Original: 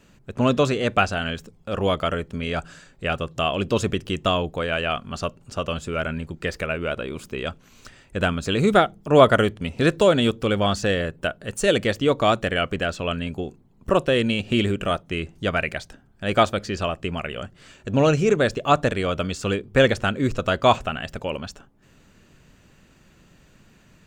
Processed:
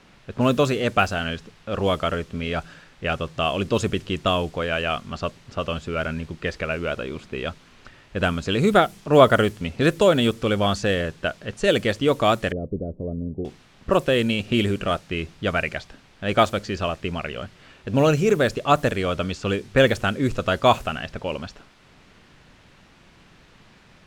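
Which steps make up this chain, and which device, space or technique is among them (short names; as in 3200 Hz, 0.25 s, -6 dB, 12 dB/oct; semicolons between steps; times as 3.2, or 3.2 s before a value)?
cassette deck with a dynamic noise filter (white noise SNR 25 dB; low-pass opened by the level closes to 2900 Hz, open at -14.5 dBFS); 12.52–13.45 inverse Chebyshev low-pass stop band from 1700 Hz, stop band 60 dB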